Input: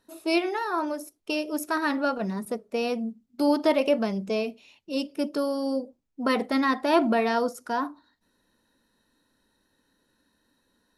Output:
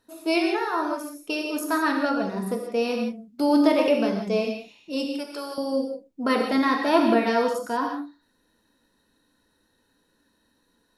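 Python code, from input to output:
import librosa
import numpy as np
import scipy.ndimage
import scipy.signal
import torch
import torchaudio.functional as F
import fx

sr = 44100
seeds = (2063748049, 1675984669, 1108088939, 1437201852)

y = fx.highpass(x, sr, hz=700.0, slope=12, at=(5.08, 5.58))
y = fx.rev_gated(y, sr, seeds[0], gate_ms=200, shape='flat', drr_db=1.5)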